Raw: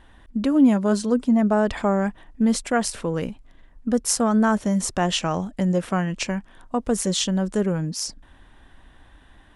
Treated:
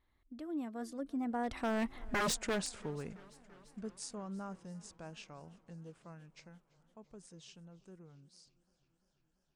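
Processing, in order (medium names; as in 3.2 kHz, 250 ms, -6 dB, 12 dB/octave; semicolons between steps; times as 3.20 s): Doppler pass-by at 2.11 s, 39 m/s, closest 2.9 m; wavefolder -31.5 dBFS; modulated delay 339 ms, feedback 75%, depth 76 cents, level -24 dB; trim +4 dB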